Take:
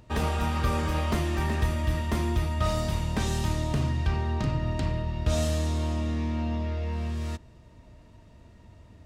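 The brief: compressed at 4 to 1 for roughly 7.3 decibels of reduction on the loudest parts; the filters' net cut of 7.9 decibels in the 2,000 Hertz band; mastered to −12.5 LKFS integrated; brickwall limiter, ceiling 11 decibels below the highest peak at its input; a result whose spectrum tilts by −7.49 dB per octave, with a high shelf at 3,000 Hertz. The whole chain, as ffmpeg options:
ffmpeg -i in.wav -af "equalizer=frequency=2000:width_type=o:gain=-8.5,highshelf=frequency=3000:gain=-4,acompressor=threshold=-30dB:ratio=4,volume=28dB,alimiter=limit=-4.5dB:level=0:latency=1" out.wav

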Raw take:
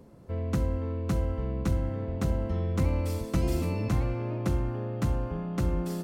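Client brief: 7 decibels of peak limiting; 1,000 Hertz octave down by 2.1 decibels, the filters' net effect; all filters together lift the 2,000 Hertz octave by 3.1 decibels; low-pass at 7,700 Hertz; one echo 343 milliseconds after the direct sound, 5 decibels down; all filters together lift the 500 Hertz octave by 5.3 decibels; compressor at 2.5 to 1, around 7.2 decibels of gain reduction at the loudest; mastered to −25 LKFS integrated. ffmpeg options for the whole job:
ffmpeg -i in.wav -af "lowpass=7700,equalizer=frequency=500:width_type=o:gain=7.5,equalizer=frequency=1000:width_type=o:gain=-7,equalizer=frequency=2000:width_type=o:gain=5.5,acompressor=threshold=-32dB:ratio=2.5,alimiter=level_in=3.5dB:limit=-24dB:level=0:latency=1,volume=-3.5dB,aecho=1:1:343:0.562,volume=10.5dB" out.wav

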